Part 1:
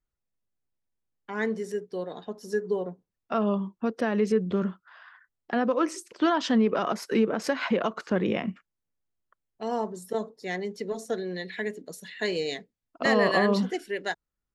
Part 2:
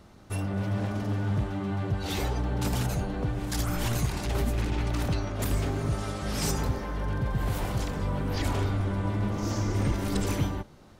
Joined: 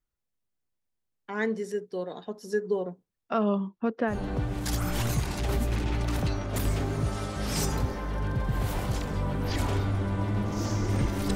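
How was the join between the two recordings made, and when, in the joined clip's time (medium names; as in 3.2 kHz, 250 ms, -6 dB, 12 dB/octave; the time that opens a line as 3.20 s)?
part 1
3.49–4.21 s: low-pass 8.2 kHz -> 1.6 kHz
4.14 s: go over to part 2 from 3.00 s, crossfade 0.14 s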